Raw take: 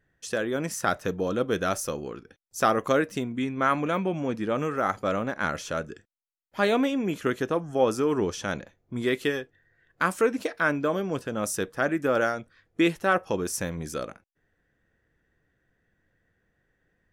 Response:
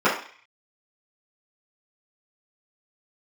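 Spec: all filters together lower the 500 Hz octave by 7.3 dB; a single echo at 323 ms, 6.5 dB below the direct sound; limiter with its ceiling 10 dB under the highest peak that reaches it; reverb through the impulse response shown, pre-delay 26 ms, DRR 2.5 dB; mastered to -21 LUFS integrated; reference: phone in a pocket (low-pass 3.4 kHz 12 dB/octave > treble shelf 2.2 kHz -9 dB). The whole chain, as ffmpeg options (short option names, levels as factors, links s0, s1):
-filter_complex "[0:a]equalizer=f=500:t=o:g=-8.5,alimiter=limit=0.0891:level=0:latency=1,aecho=1:1:323:0.473,asplit=2[s0][s1];[1:a]atrim=start_sample=2205,adelay=26[s2];[s1][s2]afir=irnorm=-1:irlink=0,volume=0.0708[s3];[s0][s3]amix=inputs=2:normalize=0,lowpass=3400,highshelf=f=2200:g=-9,volume=3.35"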